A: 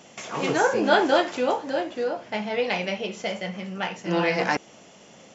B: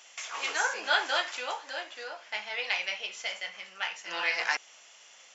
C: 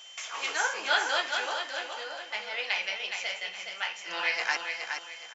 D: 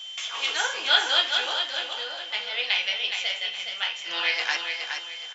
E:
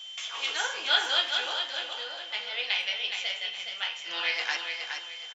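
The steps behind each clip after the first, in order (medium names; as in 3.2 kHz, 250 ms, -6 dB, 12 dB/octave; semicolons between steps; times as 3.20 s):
high-pass 1.4 kHz 12 dB/octave
whistle 3.1 kHz -47 dBFS; on a send: feedback delay 418 ms, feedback 32%, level -6 dB
peaking EQ 3.4 kHz +12 dB 0.58 oct; on a send at -9.5 dB: reverberation, pre-delay 3 ms
speakerphone echo 100 ms, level -16 dB; trim -4 dB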